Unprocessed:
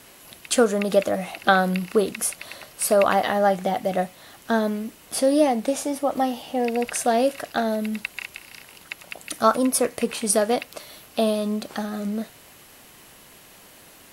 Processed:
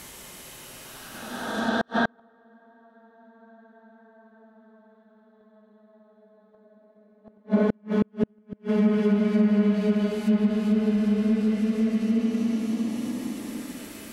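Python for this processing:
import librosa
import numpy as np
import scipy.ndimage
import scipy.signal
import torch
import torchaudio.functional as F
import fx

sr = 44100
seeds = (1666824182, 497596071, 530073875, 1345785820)

y = fx.paulstretch(x, sr, seeds[0], factor=28.0, window_s=0.1, from_s=4.42)
y = fx.env_lowpass_down(y, sr, base_hz=2100.0, full_db=-21.0)
y = fx.gate_flip(y, sr, shuts_db=-17.0, range_db=-40)
y = y * 10.0 ** (6.0 / 20.0)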